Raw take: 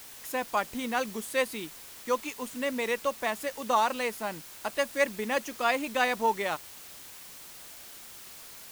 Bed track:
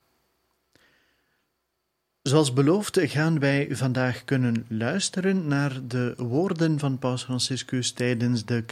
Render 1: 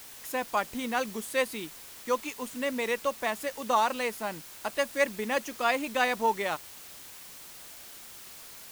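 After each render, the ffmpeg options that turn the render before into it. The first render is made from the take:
-af anull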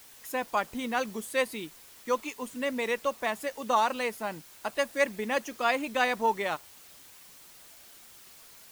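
-af "afftdn=nr=6:nf=-47"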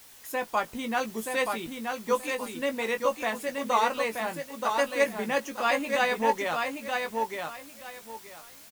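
-filter_complex "[0:a]asplit=2[a][b];[b]adelay=18,volume=-7dB[c];[a][c]amix=inputs=2:normalize=0,aecho=1:1:927|1854|2781:0.596|0.131|0.0288"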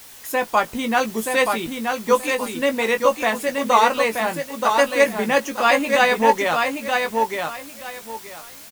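-af "volume=9dB,alimiter=limit=-2dB:level=0:latency=1"

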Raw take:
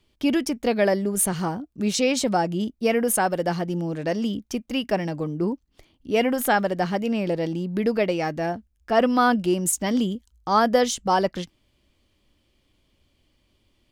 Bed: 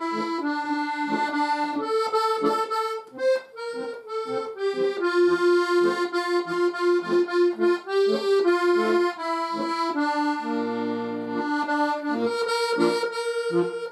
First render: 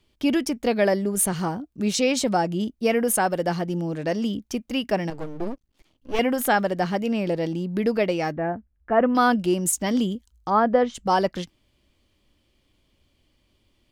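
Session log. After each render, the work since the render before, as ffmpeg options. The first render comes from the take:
-filter_complex "[0:a]asettb=1/sr,asplit=3[a][b][c];[a]atrim=end=5.104[d];[b]atrim=start=5.1:end=6.19,asetpts=PTS-STARTPTS,afade=t=in:d=0.004:c=qsin,afade=t=out:st=1.086:d=0.004:c=qsin,aeval=exprs='max(val(0),0)':c=same[e];[c]atrim=start=6.186[f];[d][e]acrossfade=d=0.004:c1=hsin:c2=qsin[g];[g][f]acrossfade=d=0.004:c1=qsin:c2=hsin,asettb=1/sr,asplit=3[h][i][j];[h]atrim=end=8.324[k];[i]atrim=start=8.32:end=9.15,asetpts=PTS-STARTPTS,afade=t=in:d=0.004:c=qsin,afade=t=out:st=0.826:d=0.004:c=qsin,lowpass=f=2k:w=0.5412,lowpass=f=2k:w=1.3066[l];[j]atrim=start=9.146[m];[k][l]acrossfade=d=0.004:c1=hsin:c2=qsin[n];[n][m]acrossfade=d=0.004:c1=qsin:c2=hsin,asplit=3[o][p][q];[o]afade=t=out:st=10.49:d=0.02[r];[p]lowpass=1.7k,afade=t=in:st=10.49:d=0.02,afade=t=out:st=10.94:d=0.02[s];[q]afade=t=in:st=10.94:d=0.02[t];[r][s][t]amix=inputs=3:normalize=0"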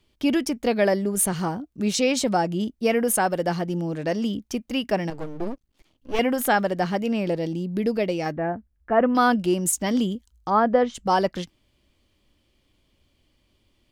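-filter_complex "[0:a]asettb=1/sr,asplit=3[a][b][c];[a]atrim=end=7.384[d];[b]atrim=start=7.38:end=8.26,asetpts=PTS-STARTPTS,afade=t=in:d=0.004:c=qsin,afade=t=out:st=0.876:d=0.004:c=qsin,equalizer=f=1.3k:t=o:w=1.8:g=-6.5[e];[c]atrim=start=8.256[f];[d][e]acrossfade=d=0.004:c1=hsin:c2=qsin[g];[g][f]acrossfade=d=0.004:c1=qsin:c2=hsin"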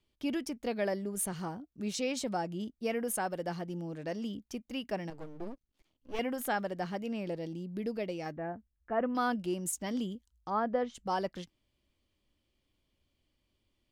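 -af "volume=-12dB"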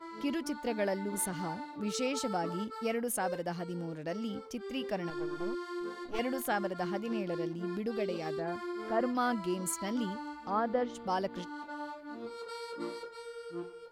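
-filter_complex "[1:a]volume=-18dB[a];[0:a][a]amix=inputs=2:normalize=0"

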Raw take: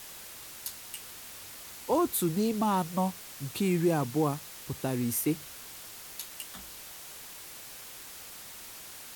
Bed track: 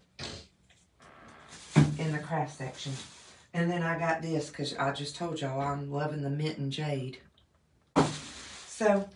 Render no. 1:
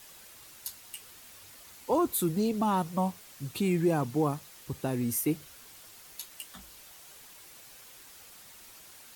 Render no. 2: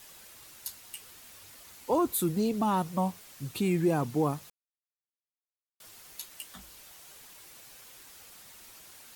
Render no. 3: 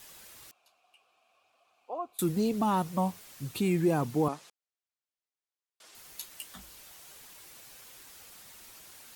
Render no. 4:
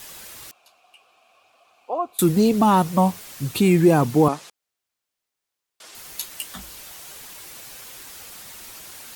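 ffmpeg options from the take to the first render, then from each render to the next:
-af "afftdn=nr=7:nf=-46"
-filter_complex "[0:a]asplit=3[a][b][c];[a]atrim=end=4.5,asetpts=PTS-STARTPTS,afade=t=out:st=4.496:d=0.004:c=hsin[d];[b]atrim=start=4.5:end=5.8,asetpts=PTS-STARTPTS,volume=0[e];[c]atrim=start=5.8,asetpts=PTS-STARTPTS,afade=t=in:d=0.004:c=hsin[f];[d][e][f]concat=n=3:v=0:a=1"
-filter_complex "[0:a]asettb=1/sr,asplit=3[a][b][c];[a]atrim=end=0.514[d];[b]atrim=start=0.51:end=2.19,asetpts=PTS-STARTPTS,afade=t=in:d=0.004:c=qsin,afade=t=out:st=1.676:d=0.004:c=qsin,asplit=3[e][f][g];[e]bandpass=f=730:t=q:w=8,volume=0dB[h];[f]bandpass=f=1.09k:t=q:w=8,volume=-6dB[i];[g]bandpass=f=2.44k:t=q:w=8,volume=-9dB[j];[h][i][j]amix=inputs=3:normalize=0[k];[c]atrim=start=2.186[l];[d][k]acrossfade=d=0.004:c1=hsin:c2=qsin[m];[m][l]acrossfade=d=0.004:c1=qsin:c2=hsin,asettb=1/sr,asplit=3[n][o][p];[n]atrim=end=4.284[q];[o]atrim=start=4.28:end=5.95,asetpts=PTS-STARTPTS,afade=t=in:d=0.004:c=qsin,afade=t=out:st=1.666:d=0.004:c=qsin,highpass=310,lowpass=7.9k[r];[p]atrim=start=5.946[s];[q][r]acrossfade=d=0.004:c1=hsin:c2=qsin[t];[t][s]acrossfade=d=0.004:c1=qsin:c2=hsin"
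-af "volume=11dB"

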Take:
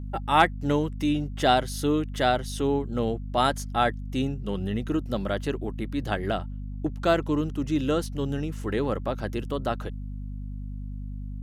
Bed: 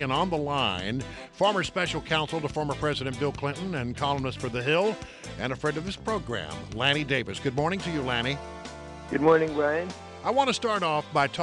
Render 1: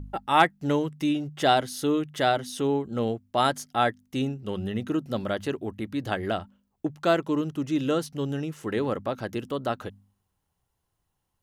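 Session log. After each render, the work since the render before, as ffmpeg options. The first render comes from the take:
-af "bandreject=f=50:t=h:w=4,bandreject=f=100:t=h:w=4,bandreject=f=150:t=h:w=4,bandreject=f=200:t=h:w=4,bandreject=f=250:t=h:w=4"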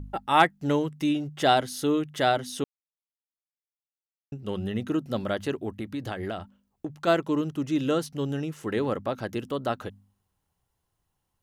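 -filter_complex "[0:a]asplit=3[a][b][c];[a]afade=t=out:st=5.77:d=0.02[d];[b]acompressor=threshold=-28dB:ratio=5:attack=3.2:release=140:knee=1:detection=peak,afade=t=in:st=5.77:d=0.02,afade=t=out:st=7.06:d=0.02[e];[c]afade=t=in:st=7.06:d=0.02[f];[d][e][f]amix=inputs=3:normalize=0,asplit=3[g][h][i];[g]atrim=end=2.64,asetpts=PTS-STARTPTS,afade=t=out:st=2.636:d=0.004:c=hsin[j];[h]atrim=start=2.64:end=4.32,asetpts=PTS-STARTPTS,volume=0[k];[i]atrim=start=4.32,asetpts=PTS-STARTPTS,afade=t=in:d=0.004:c=hsin[l];[j][k][l]concat=n=3:v=0:a=1"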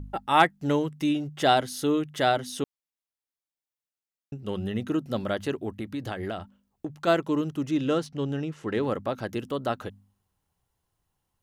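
-filter_complex "[0:a]asettb=1/sr,asplit=3[a][b][c];[a]atrim=end=7.714[d];[b]atrim=start=7.71:end=8.83,asetpts=PTS-STARTPTS,afade=t=in:d=0.004:c=qsin,afade=t=out:st=1.116:d=0.004:c=qsin,adynamicsmooth=sensitivity=6:basefreq=5.9k[e];[c]atrim=start=8.826[f];[d][e]acrossfade=d=0.004:c1=hsin:c2=qsin[g];[g][f]acrossfade=d=0.004:c1=qsin:c2=hsin"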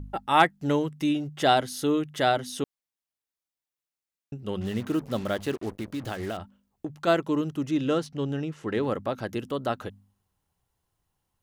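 -filter_complex "[0:a]asettb=1/sr,asplit=3[a][b][c];[a]atrim=end=4.614[d];[b]atrim=start=4.61:end=6.37,asetpts=PTS-STARTPTS,afade=t=in:d=0.004:c=qsin,afade=t=out:st=1.756:d=0.004:c=qsin,acrusher=bits=6:mix=0:aa=0.5[e];[c]atrim=start=6.366[f];[d][e]acrossfade=d=0.004:c1=hsin:c2=qsin[g];[g][f]acrossfade=d=0.004:c1=qsin:c2=hsin"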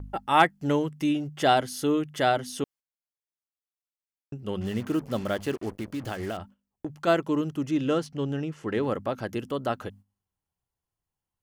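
-af "bandreject=f=3.8k:w=11,agate=range=-11dB:threshold=-48dB:ratio=16:detection=peak"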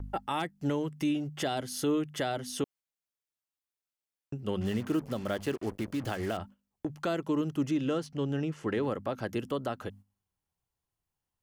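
-filter_complex "[0:a]acrossover=split=440|3000[a][b][c];[b]acompressor=threshold=-25dB:ratio=6[d];[a][d][c]amix=inputs=3:normalize=0,alimiter=limit=-21dB:level=0:latency=1:release=285"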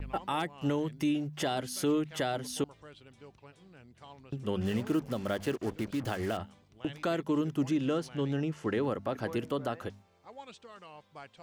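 -filter_complex "[1:a]volume=-24.5dB[a];[0:a][a]amix=inputs=2:normalize=0"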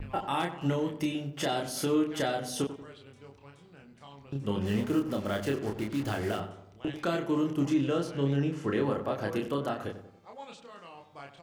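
-filter_complex "[0:a]asplit=2[a][b];[b]adelay=29,volume=-3dB[c];[a][c]amix=inputs=2:normalize=0,asplit=2[d][e];[e]adelay=92,lowpass=f=1.9k:p=1,volume=-11dB,asplit=2[f][g];[g]adelay=92,lowpass=f=1.9k:p=1,volume=0.5,asplit=2[h][i];[i]adelay=92,lowpass=f=1.9k:p=1,volume=0.5,asplit=2[j][k];[k]adelay=92,lowpass=f=1.9k:p=1,volume=0.5,asplit=2[l][m];[m]adelay=92,lowpass=f=1.9k:p=1,volume=0.5[n];[f][h][j][l][n]amix=inputs=5:normalize=0[o];[d][o]amix=inputs=2:normalize=0"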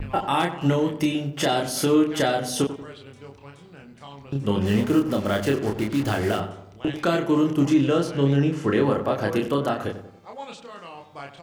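-af "volume=8dB"

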